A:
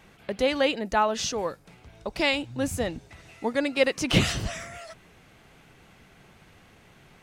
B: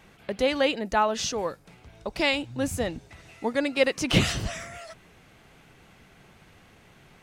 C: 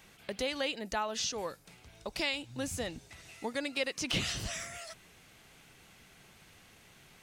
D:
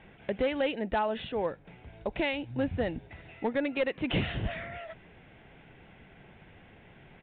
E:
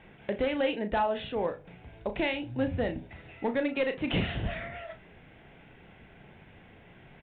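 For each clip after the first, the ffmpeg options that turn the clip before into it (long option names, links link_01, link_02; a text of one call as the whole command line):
ffmpeg -i in.wav -af anull out.wav
ffmpeg -i in.wav -filter_complex "[0:a]acrossover=split=6300[link_01][link_02];[link_02]acompressor=threshold=-45dB:ratio=4:attack=1:release=60[link_03];[link_01][link_03]amix=inputs=2:normalize=0,highshelf=frequency=2700:gain=12,acompressor=threshold=-27dB:ratio=2,volume=-7dB" out.wav
ffmpeg -i in.wav -af "lowpass=1800,equalizer=frequency=1200:width=3.4:gain=-9.5,aresample=8000,volume=29.5dB,asoftclip=hard,volume=-29.5dB,aresample=44100,volume=8dB" out.wav
ffmpeg -i in.wav -filter_complex "[0:a]asplit=2[link_01][link_02];[link_02]adelay=34,volume=-8.5dB[link_03];[link_01][link_03]amix=inputs=2:normalize=0,asplit=2[link_04][link_05];[link_05]adelay=62,lowpass=frequency=850:poles=1,volume=-13.5dB,asplit=2[link_06][link_07];[link_07]adelay=62,lowpass=frequency=850:poles=1,volume=0.39,asplit=2[link_08][link_09];[link_09]adelay=62,lowpass=frequency=850:poles=1,volume=0.39,asplit=2[link_10][link_11];[link_11]adelay=62,lowpass=frequency=850:poles=1,volume=0.39[link_12];[link_04][link_06][link_08][link_10][link_12]amix=inputs=5:normalize=0" out.wav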